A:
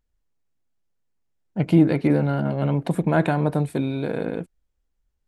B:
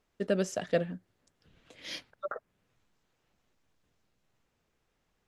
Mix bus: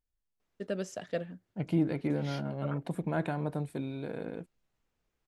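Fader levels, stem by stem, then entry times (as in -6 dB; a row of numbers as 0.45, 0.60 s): -12.0, -6.0 dB; 0.00, 0.40 s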